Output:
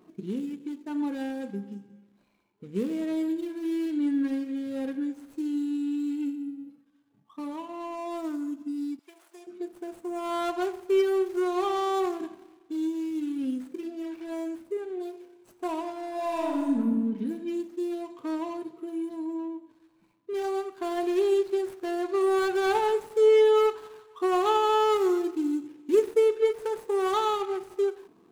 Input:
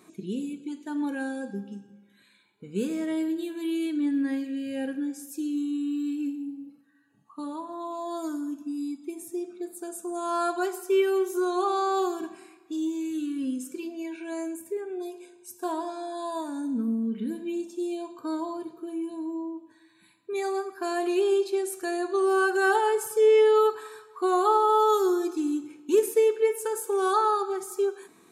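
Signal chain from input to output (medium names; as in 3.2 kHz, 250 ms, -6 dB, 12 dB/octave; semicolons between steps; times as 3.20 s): median filter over 25 samples; 8.99–9.47 s: high-pass 600 Hz 24 dB/octave; 16.12–16.77 s: reverb throw, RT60 1.4 s, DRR -2.5 dB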